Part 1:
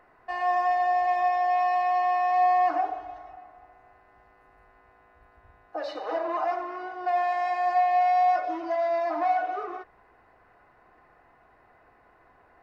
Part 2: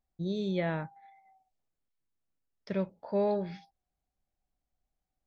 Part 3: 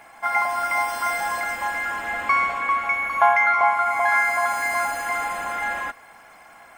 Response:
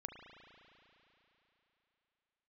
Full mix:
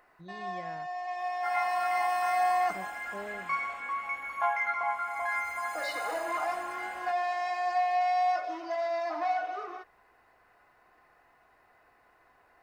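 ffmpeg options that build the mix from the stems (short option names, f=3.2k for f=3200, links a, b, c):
-filter_complex "[0:a]highshelf=f=3.4k:g=12,volume=-4.5dB[a];[1:a]volume=-11.5dB,asplit=2[b][c];[2:a]flanger=delay=19:depth=6:speed=0.35,adelay=1200,volume=-9dB[d];[c]apad=whole_len=556932[e];[a][e]sidechaincompress=threshold=-47dB:ratio=8:attack=16:release=1470[f];[f][b][d]amix=inputs=3:normalize=0,lowshelf=f=430:g=-5"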